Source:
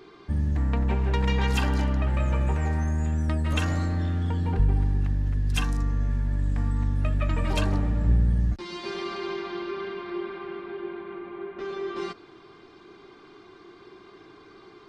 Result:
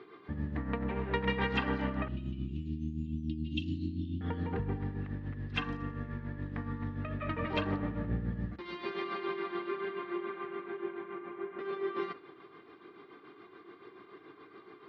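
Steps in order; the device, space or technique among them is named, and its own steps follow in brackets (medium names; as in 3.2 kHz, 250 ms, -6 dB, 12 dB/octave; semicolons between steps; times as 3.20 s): 2.08–4.21 s: Chebyshev band-stop 340–2800 Hz, order 5; combo amplifier with spring reverb and tremolo (spring tank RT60 1.2 s, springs 32/56 ms, chirp 65 ms, DRR 17.5 dB; tremolo 7 Hz, depth 56%; cabinet simulation 110–3700 Hz, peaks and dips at 280 Hz +4 dB, 470 Hz +5 dB, 1.2 kHz +5 dB, 1.9 kHz +6 dB); trim -4 dB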